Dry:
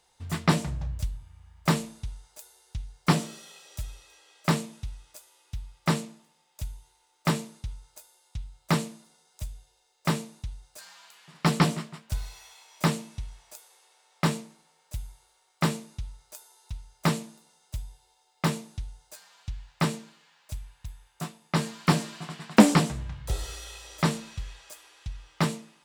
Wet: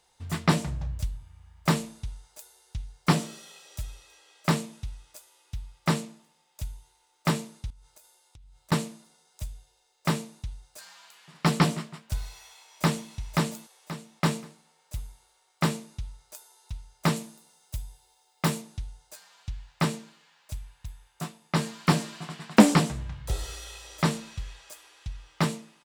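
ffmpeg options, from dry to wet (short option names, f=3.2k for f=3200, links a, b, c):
-filter_complex "[0:a]asettb=1/sr,asplit=3[a][b][c];[a]atrim=end=7.704[d];[b]atrim=start=7.7:end=8.72,asetpts=PTS-STARTPTS,afade=t=in:d=0.004:c=qsin,afade=t=out:st=1.016:d=0.004:c=qsin,acompressor=threshold=-50dB:ratio=6:attack=3.2:release=140:knee=1:detection=peak[e];[c]atrim=start=8.716[f];[d][e]acrossfade=d=0.004:c1=hsin:c2=qsin[g];[g][f]acrossfade=d=0.004:c1=qsin:c2=hsin,asplit=2[h][i];[i]afade=t=in:st=12.3:d=0.01,afade=t=out:st=13.13:d=0.01,aecho=0:1:530|1060|1590|2120:0.891251|0.222813|0.0557032|0.0139258[j];[h][j]amix=inputs=2:normalize=0,asettb=1/sr,asplit=3[k][l][m];[k]atrim=end=17.164[n];[l]atrim=start=17.16:end=18.62,asetpts=PTS-STARTPTS,afade=t=in:d=0.004:c=qsin,afade=t=out:st=1.456:d=0.004:c=qsin,highshelf=f=10k:g=9[o];[m]atrim=start=18.616[p];[n][o]acrossfade=d=0.004:c1=hsin:c2=qsin[q];[q][p]acrossfade=d=0.004:c1=qsin:c2=hsin"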